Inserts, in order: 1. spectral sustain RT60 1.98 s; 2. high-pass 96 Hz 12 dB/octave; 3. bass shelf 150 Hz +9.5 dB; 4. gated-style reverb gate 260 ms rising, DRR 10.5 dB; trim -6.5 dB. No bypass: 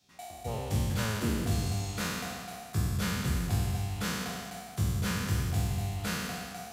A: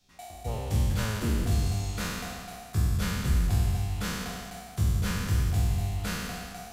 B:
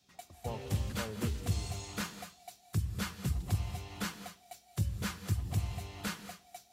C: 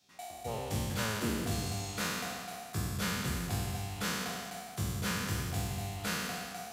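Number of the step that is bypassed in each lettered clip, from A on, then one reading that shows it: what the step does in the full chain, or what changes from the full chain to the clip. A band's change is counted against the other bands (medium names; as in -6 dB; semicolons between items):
2, 125 Hz band +3.5 dB; 1, crest factor change +3.0 dB; 3, 125 Hz band -6.0 dB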